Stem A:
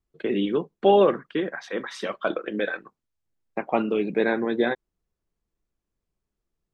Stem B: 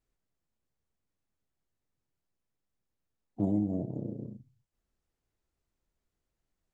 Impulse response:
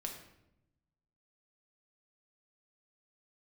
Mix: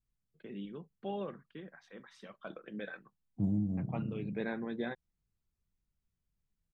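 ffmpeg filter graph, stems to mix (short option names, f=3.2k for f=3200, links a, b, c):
-filter_complex "[0:a]adelay=200,volume=-14.5dB,afade=t=in:st=2.32:d=0.69:silence=0.446684[a];[1:a]equalizer=f=630:w=1.5:g=-6.5,volume=-8dB,asplit=2[b][c];[c]apad=whole_len=305902[d];[a][d]sidechaincompress=threshold=-44dB:ratio=8:attack=25:release=359[e];[e][b]amix=inputs=2:normalize=0,lowshelf=f=240:t=q:w=1.5:g=7.5"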